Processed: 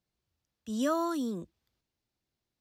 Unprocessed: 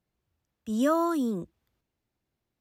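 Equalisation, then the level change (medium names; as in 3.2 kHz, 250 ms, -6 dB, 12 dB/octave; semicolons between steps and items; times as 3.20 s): peaking EQ 4.7 kHz +8 dB 1.3 oct; -5.0 dB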